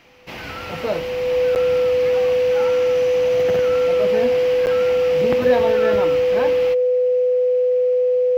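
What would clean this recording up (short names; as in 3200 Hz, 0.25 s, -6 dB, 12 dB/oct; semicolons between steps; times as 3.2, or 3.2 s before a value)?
notch 500 Hz, Q 30; interpolate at 1.55/4.66, 9.3 ms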